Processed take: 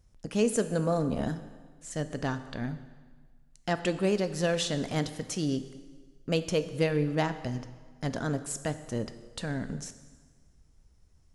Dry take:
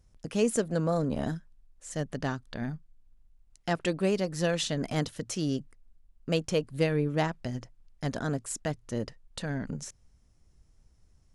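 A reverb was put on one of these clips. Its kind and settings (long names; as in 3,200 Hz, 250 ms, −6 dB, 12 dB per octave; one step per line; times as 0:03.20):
dense smooth reverb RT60 1.5 s, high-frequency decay 0.9×, DRR 10.5 dB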